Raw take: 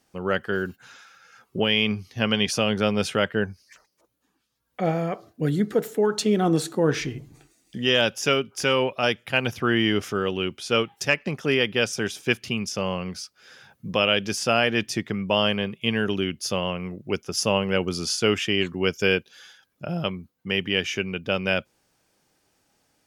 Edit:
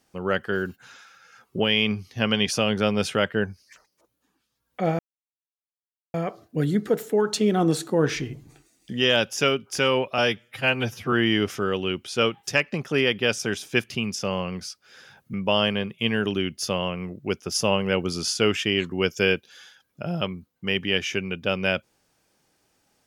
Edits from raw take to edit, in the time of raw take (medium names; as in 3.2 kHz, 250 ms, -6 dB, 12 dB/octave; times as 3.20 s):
4.99 s: insert silence 1.15 s
9.03–9.66 s: stretch 1.5×
13.87–15.16 s: delete